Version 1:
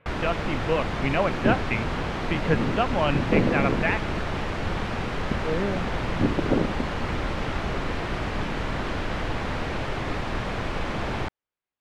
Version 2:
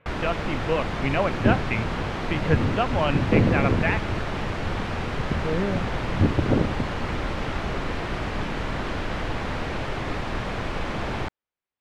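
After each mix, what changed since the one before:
second sound: remove high-pass filter 170 Hz 12 dB per octave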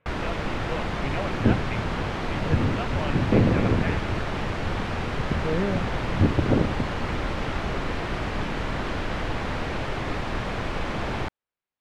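speech −9.0 dB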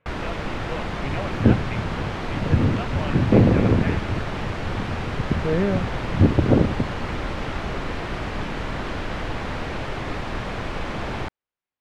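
second sound +4.5 dB

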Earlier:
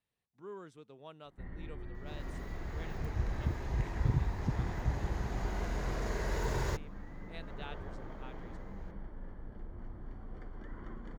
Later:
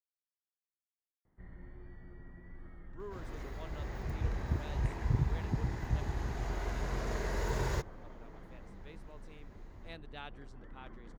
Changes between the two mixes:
speech: entry +2.55 s
first sound −6.0 dB
second sound: entry +1.05 s

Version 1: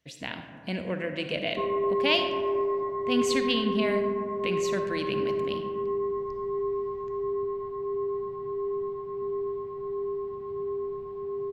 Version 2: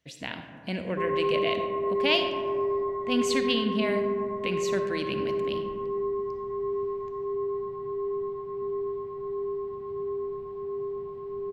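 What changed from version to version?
background: entry −0.60 s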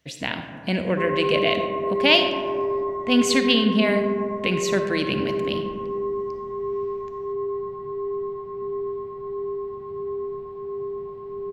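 speech +8.0 dB
background: send +10.5 dB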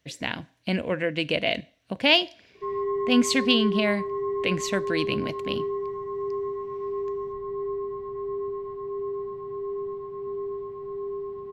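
background: entry +1.65 s
reverb: off

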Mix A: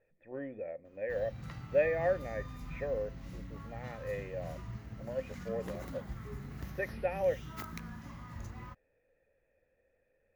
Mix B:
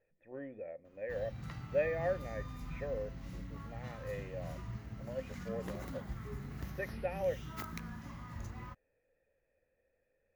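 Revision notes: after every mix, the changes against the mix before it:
speech −4.0 dB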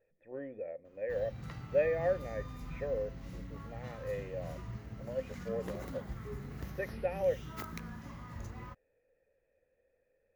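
master: add parametric band 470 Hz +5 dB 0.71 octaves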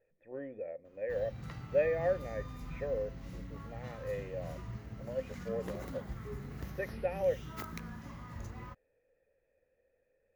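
nothing changed

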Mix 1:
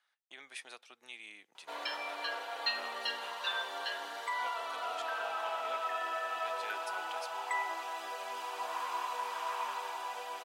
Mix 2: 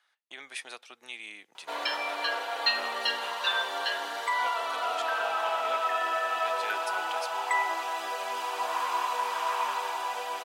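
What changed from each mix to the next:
speech +7.0 dB
background +7.5 dB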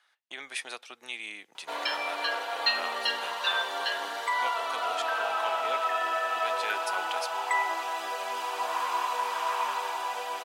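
speech +3.5 dB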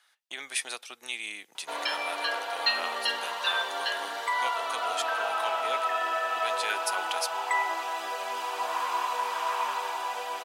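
speech: remove low-pass filter 3,000 Hz 6 dB per octave

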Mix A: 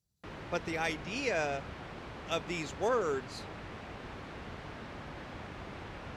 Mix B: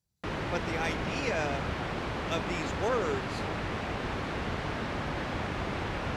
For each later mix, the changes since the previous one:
background +11.0 dB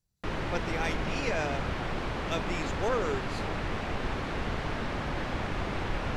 master: remove high-pass filter 55 Hz

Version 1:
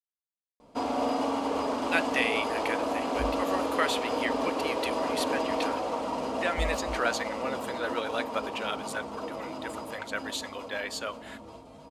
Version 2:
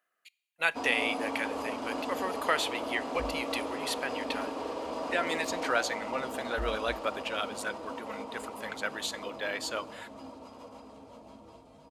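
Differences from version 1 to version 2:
speech: entry −1.30 s
background −6.0 dB

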